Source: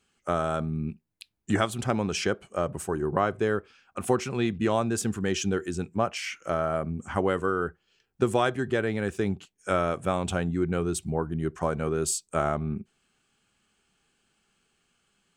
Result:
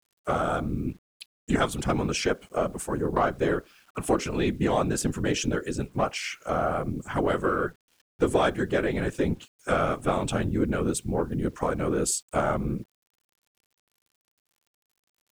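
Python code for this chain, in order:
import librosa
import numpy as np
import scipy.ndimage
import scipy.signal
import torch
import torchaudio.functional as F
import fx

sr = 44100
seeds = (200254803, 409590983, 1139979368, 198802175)

y = fx.cheby_harmonics(x, sr, harmonics=(5,), levels_db=(-28,), full_scale_db=-10.0)
y = fx.whisperise(y, sr, seeds[0])
y = fx.quant_dither(y, sr, seeds[1], bits=10, dither='none')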